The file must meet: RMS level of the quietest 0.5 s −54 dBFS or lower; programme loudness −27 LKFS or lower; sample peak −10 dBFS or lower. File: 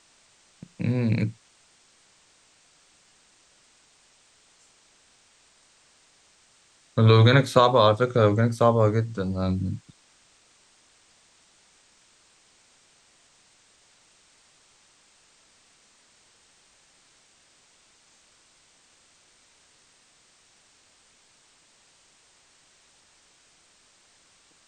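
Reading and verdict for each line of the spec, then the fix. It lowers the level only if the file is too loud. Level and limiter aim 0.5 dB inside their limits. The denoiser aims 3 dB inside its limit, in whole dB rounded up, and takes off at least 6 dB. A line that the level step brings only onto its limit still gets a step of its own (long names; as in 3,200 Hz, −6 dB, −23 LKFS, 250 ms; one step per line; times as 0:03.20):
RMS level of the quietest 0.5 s −61 dBFS: in spec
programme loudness −21.5 LKFS: out of spec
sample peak −5.5 dBFS: out of spec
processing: level −6 dB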